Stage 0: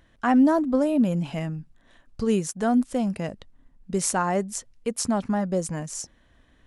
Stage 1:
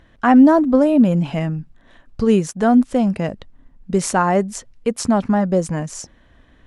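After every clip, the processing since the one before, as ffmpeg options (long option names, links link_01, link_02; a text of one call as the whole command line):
ffmpeg -i in.wav -af "lowpass=frequency=3400:poles=1,volume=8dB" out.wav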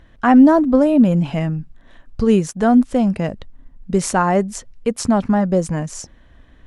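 ffmpeg -i in.wav -af "lowshelf=frequency=83:gain=6.5" out.wav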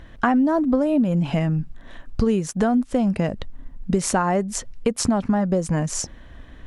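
ffmpeg -i in.wav -af "acompressor=threshold=-23dB:ratio=6,volume=5.5dB" out.wav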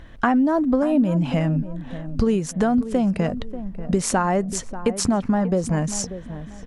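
ffmpeg -i in.wav -filter_complex "[0:a]asplit=2[link_01][link_02];[link_02]adelay=588,lowpass=frequency=1100:poles=1,volume=-12dB,asplit=2[link_03][link_04];[link_04]adelay=588,lowpass=frequency=1100:poles=1,volume=0.36,asplit=2[link_05][link_06];[link_06]adelay=588,lowpass=frequency=1100:poles=1,volume=0.36,asplit=2[link_07][link_08];[link_08]adelay=588,lowpass=frequency=1100:poles=1,volume=0.36[link_09];[link_01][link_03][link_05][link_07][link_09]amix=inputs=5:normalize=0" out.wav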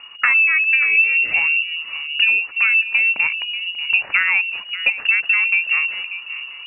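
ffmpeg -i in.wav -af "lowpass=frequency=2500:width_type=q:width=0.5098,lowpass=frequency=2500:width_type=q:width=0.6013,lowpass=frequency=2500:width_type=q:width=0.9,lowpass=frequency=2500:width_type=q:width=2.563,afreqshift=-2900,volume=3dB" out.wav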